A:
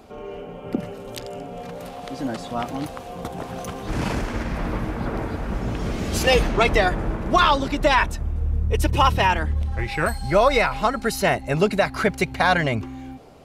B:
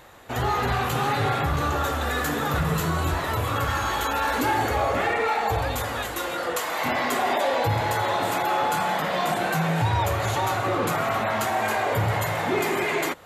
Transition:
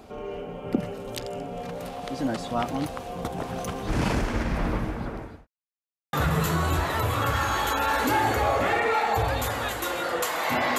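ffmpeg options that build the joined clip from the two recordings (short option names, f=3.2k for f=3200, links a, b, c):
-filter_complex "[0:a]apad=whole_dur=10.78,atrim=end=10.78,asplit=2[a][b];[a]atrim=end=5.47,asetpts=PTS-STARTPTS,afade=t=out:st=4.66:d=0.81[c];[b]atrim=start=5.47:end=6.13,asetpts=PTS-STARTPTS,volume=0[d];[1:a]atrim=start=2.47:end=7.12,asetpts=PTS-STARTPTS,afade=t=in:d=0.004:c=hsin[e];[c][d][e]concat=n=3:v=0:a=1"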